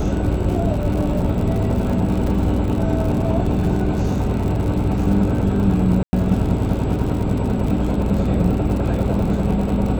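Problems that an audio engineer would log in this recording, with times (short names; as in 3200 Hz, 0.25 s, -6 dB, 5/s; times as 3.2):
crackle 100/s -26 dBFS
hum 60 Hz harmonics 7 -24 dBFS
2.27 gap 3.1 ms
6.03–6.13 gap 0.1 s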